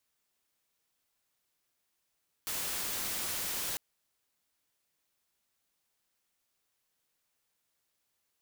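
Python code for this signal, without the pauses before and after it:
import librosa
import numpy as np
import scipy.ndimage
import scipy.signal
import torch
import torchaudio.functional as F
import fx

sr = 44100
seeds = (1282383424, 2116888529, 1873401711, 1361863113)

y = fx.noise_colour(sr, seeds[0], length_s=1.3, colour='white', level_db=-35.5)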